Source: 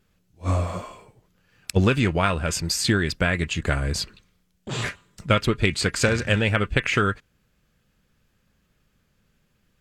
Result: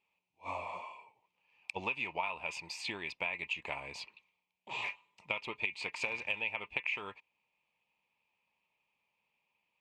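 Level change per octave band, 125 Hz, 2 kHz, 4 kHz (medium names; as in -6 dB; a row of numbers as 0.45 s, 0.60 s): -33.5 dB, -10.5 dB, -15.0 dB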